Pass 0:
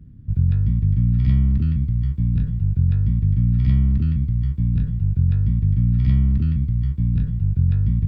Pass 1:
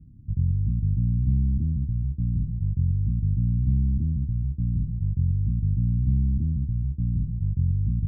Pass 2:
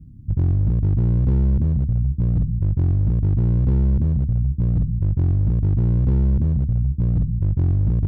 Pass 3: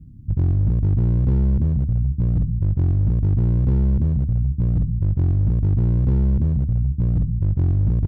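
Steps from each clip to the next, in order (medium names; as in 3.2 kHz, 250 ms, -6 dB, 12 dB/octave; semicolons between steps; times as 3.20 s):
FFT filter 350 Hz 0 dB, 530 Hz -22 dB, 1.4 kHz -28 dB; trim -5.5 dB
hard clipper -20 dBFS, distortion -15 dB; trim +6.5 dB
feedback delay 71 ms, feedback 33%, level -21 dB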